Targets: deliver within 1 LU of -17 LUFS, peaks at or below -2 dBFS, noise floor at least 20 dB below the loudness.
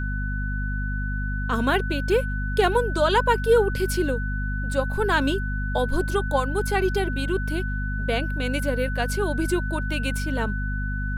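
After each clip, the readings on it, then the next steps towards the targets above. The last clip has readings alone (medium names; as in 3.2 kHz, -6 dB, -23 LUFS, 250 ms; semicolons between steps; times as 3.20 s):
hum 50 Hz; highest harmonic 250 Hz; hum level -25 dBFS; steady tone 1.5 kHz; tone level -32 dBFS; loudness -24.5 LUFS; peak level -8.0 dBFS; loudness target -17.0 LUFS
-> de-hum 50 Hz, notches 5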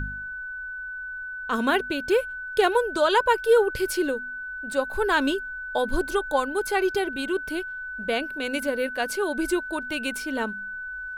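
hum not found; steady tone 1.5 kHz; tone level -32 dBFS
-> band-stop 1.5 kHz, Q 30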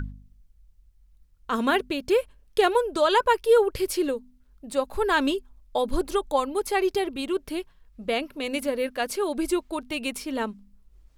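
steady tone not found; loudness -26.0 LUFS; peak level -9.0 dBFS; loudness target -17.0 LUFS
-> trim +9 dB; peak limiter -2 dBFS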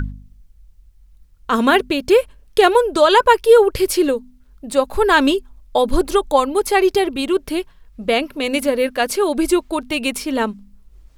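loudness -17.0 LUFS; peak level -2.0 dBFS; noise floor -50 dBFS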